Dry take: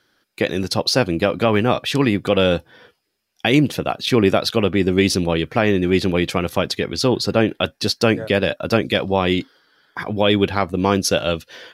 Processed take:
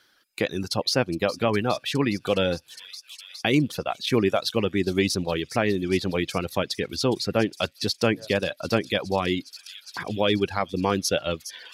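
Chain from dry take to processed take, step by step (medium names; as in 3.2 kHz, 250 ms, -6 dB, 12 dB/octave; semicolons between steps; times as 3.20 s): feedback echo behind a high-pass 412 ms, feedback 82%, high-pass 4.8 kHz, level -10 dB; reverb removal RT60 0.79 s; tape noise reduction on one side only encoder only; trim -5.5 dB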